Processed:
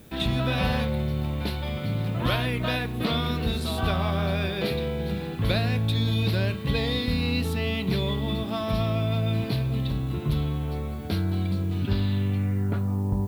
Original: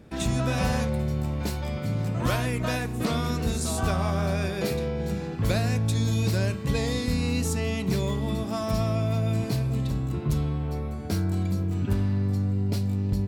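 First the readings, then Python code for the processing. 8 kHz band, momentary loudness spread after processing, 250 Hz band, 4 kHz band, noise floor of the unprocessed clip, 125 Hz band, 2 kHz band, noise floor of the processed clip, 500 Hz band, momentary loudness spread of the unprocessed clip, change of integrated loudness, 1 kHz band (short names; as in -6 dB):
-11.0 dB, 4 LU, 0.0 dB, +5.5 dB, -32 dBFS, 0.0 dB, +2.5 dB, -32 dBFS, 0.0 dB, 4 LU, +0.5 dB, +0.5 dB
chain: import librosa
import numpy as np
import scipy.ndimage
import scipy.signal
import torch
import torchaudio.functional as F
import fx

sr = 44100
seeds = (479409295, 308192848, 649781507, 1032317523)

y = fx.high_shelf_res(x, sr, hz=5000.0, db=-11.5, q=3.0)
y = fx.filter_sweep_lowpass(y, sr, from_hz=12000.0, to_hz=930.0, start_s=11.38, end_s=13.01, q=3.5)
y = fx.dmg_noise_colour(y, sr, seeds[0], colour='blue', level_db=-58.0)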